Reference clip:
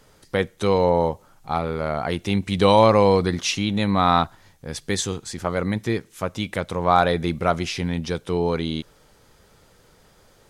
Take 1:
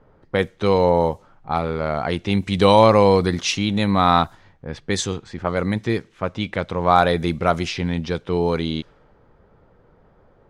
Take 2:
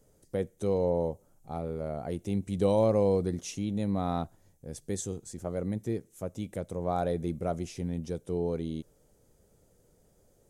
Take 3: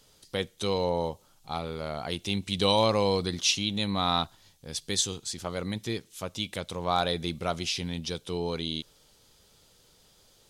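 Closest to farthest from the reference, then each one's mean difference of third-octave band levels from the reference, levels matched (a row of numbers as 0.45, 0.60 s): 1, 3, 2; 1.0, 3.5, 4.5 dB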